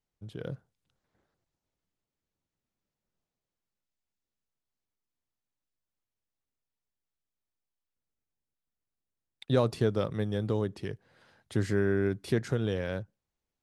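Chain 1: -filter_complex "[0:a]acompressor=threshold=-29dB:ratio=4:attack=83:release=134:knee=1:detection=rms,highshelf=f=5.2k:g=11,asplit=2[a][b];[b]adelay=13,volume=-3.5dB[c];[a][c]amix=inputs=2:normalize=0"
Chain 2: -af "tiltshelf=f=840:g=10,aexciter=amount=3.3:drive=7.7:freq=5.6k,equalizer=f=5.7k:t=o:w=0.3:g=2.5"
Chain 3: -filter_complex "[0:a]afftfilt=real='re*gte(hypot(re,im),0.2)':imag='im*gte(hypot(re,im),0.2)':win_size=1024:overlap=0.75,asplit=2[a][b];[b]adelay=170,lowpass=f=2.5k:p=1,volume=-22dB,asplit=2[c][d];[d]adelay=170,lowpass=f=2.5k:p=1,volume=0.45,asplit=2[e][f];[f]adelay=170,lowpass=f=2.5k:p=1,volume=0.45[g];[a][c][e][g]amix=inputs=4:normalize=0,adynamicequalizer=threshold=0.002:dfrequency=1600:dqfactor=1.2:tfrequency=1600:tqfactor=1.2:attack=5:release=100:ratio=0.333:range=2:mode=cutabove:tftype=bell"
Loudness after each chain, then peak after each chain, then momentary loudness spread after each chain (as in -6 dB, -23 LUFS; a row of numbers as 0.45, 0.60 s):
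-31.5, -23.5, -32.0 LUFS; -14.0, -6.0, -14.0 dBFS; 14, 14, 8 LU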